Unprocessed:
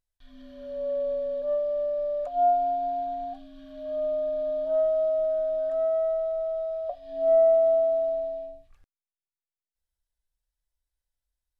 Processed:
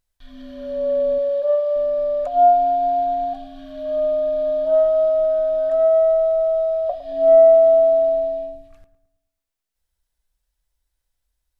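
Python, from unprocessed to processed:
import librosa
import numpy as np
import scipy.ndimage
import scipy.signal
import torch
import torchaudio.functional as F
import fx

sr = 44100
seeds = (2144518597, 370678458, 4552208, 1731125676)

y = fx.brickwall_highpass(x, sr, low_hz=400.0, at=(1.18, 1.76))
y = fx.echo_filtered(y, sr, ms=108, feedback_pct=49, hz=1600.0, wet_db=-12.0)
y = y * librosa.db_to_amplitude(9.0)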